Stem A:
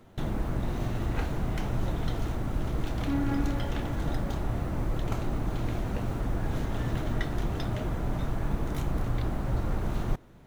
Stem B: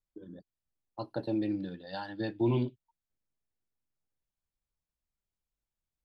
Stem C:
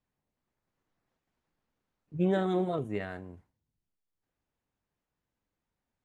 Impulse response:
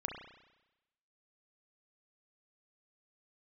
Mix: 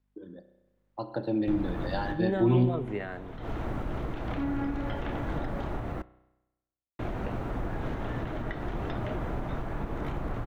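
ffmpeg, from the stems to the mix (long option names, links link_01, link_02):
-filter_complex "[0:a]acrossover=split=3300[link_01][link_02];[link_02]acompressor=threshold=-57dB:ratio=4:attack=1:release=60[link_03];[link_01][link_03]amix=inputs=2:normalize=0,alimiter=limit=-23dB:level=0:latency=1:release=225,adelay=1300,volume=-2.5dB,asplit=3[link_04][link_05][link_06];[link_04]atrim=end=6.02,asetpts=PTS-STARTPTS,afade=type=out:start_time=6.016:duration=0.004:curve=hsin[link_07];[link_05]atrim=start=6.02:end=6.99,asetpts=PTS-STARTPTS,volume=0[link_08];[link_06]atrim=start=6.99,asetpts=PTS-STARTPTS,afade=type=in:duration=0.004:curve=hsin[link_09];[link_07][link_08][link_09]concat=n=3:v=0:a=1,asplit=2[link_10][link_11];[link_11]volume=-16dB[link_12];[1:a]volume=0.5dB,asplit=2[link_13][link_14];[link_14]volume=-3.5dB[link_15];[2:a]aeval=exprs='val(0)+0.000501*(sin(2*PI*50*n/s)+sin(2*PI*2*50*n/s)/2+sin(2*PI*3*50*n/s)/3+sin(2*PI*4*50*n/s)/4+sin(2*PI*5*50*n/s)/5)':channel_layout=same,volume=-2.5dB,asplit=2[link_16][link_17];[link_17]apad=whole_len=518630[link_18];[link_10][link_18]sidechaincompress=threshold=-57dB:ratio=8:attack=8.4:release=146[link_19];[3:a]atrim=start_sample=2205[link_20];[link_12][link_15]amix=inputs=2:normalize=0[link_21];[link_21][link_20]afir=irnorm=-1:irlink=0[link_22];[link_19][link_13][link_16][link_22]amix=inputs=4:normalize=0,acrossover=split=260[link_23][link_24];[link_24]acompressor=threshold=-37dB:ratio=2[link_25];[link_23][link_25]amix=inputs=2:normalize=0,bass=frequency=250:gain=-6,treble=frequency=4000:gain=-9,dynaudnorm=framelen=270:gausssize=9:maxgain=5.5dB"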